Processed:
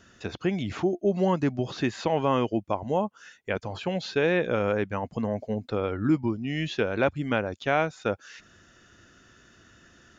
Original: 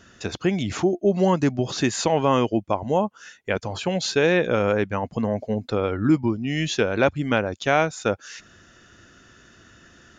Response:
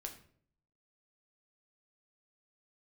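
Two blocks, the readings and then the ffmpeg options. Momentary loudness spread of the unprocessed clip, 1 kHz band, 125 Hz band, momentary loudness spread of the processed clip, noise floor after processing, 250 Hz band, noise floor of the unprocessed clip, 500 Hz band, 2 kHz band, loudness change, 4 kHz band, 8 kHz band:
7 LU, −4.5 dB, −4.5 dB, 7 LU, −58 dBFS, −4.5 dB, −54 dBFS, −4.5 dB, −4.5 dB, −4.5 dB, −7.5 dB, below −15 dB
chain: -filter_complex "[0:a]acrossover=split=4300[link_01][link_02];[link_02]acompressor=threshold=-52dB:ratio=4:attack=1:release=60[link_03];[link_01][link_03]amix=inputs=2:normalize=0,volume=-4.5dB"

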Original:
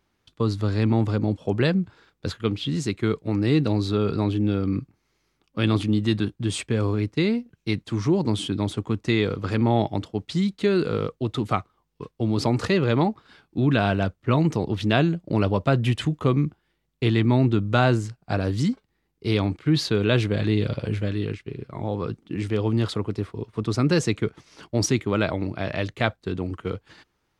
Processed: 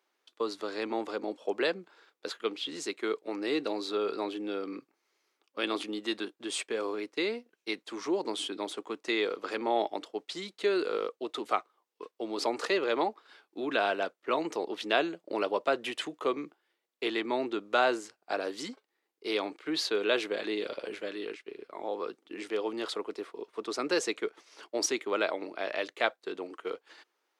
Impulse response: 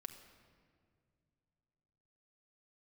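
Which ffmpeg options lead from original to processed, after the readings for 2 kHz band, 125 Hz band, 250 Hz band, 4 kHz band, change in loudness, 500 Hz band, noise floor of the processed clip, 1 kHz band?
−3.5 dB, −36.0 dB, −13.0 dB, −3.5 dB, −8.5 dB, −5.0 dB, −82 dBFS, −3.5 dB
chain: -af "highpass=frequency=370:width=0.5412,highpass=frequency=370:width=1.3066,volume=-3.5dB"

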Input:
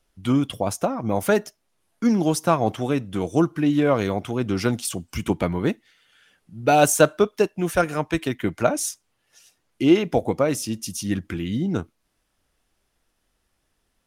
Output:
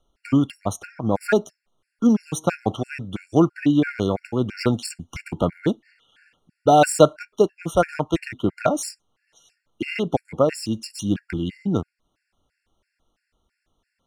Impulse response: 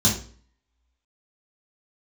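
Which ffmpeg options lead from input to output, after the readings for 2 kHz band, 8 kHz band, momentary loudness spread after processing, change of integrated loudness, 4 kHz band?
−2.0 dB, −4.0 dB, 13 LU, 0.0 dB, −1.0 dB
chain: -af "adynamicsmooth=sensitivity=4.5:basefreq=6700,afftfilt=real='re*gt(sin(2*PI*3*pts/sr)*(1-2*mod(floor(b*sr/1024/1400),2)),0)':imag='im*gt(sin(2*PI*3*pts/sr)*(1-2*mod(floor(b*sr/1024/1400),2)),0)':win_size=1024:overlap=0.75,volume=3dB"

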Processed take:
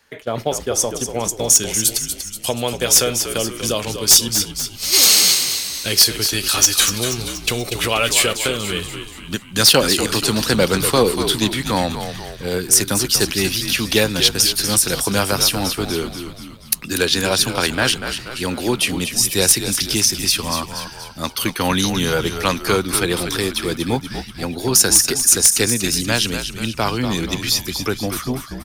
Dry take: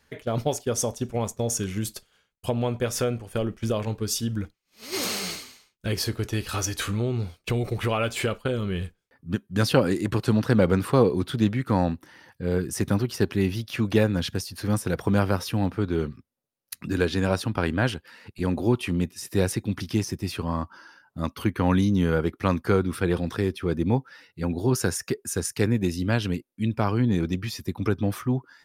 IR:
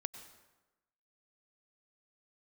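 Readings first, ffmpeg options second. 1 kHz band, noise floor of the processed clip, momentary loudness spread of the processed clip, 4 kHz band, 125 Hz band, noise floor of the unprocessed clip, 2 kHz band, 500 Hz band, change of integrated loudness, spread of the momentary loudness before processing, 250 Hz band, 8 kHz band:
+7.5 dB, −37 dBFS, 13 LU, +18.5 dB, −1.0 dB, −74 dBFS, +10.5 dB, +4.5 dB, +9.5 dB, 10 LU, +1.5 dB, +19.5 dB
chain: -filter_complex "[0:a]lowshelf=frequency=270:gain=-11,acrossover=split=170|3300[link_01][link_02][link_03];[link_03]dynaudnorm=framelen=390:gausssize=7:maxgain=15dB[link_04];[link_01][link_02][link_04]amix=inputs=3:normalize=0,aeval=exprs='0.335*(abs(mod(val(0)/0.335+3,4)-2)-1)':channel_layout=same,asplit=7[link_05][link_06][link_07][link_08][link_09][link_10][link_11];[link_06]adelay=240,afreqshift=-64,volume=-8.5dB[link_12];[link_07]adelay=480,afreqshift=-128,volume=-14.3dB[link_13];[link_08]adelay=720,afreqshift=-192,volume=-20.2dB[link_14];[link_09]adelay=960,afreqshift=-256,volume=-26dB[link_15];[link_10]adelay=1200,afreqshift=-320,volume=-31.9dB[link_16];[link_11]adelay=1440,afreqshift=-384,volume=-37.7dB[link_17];[link_05][link_12][link_13][link_14][link_15][link_16][link_17]amix=inputs=7:normalize=0,volume=7dB"

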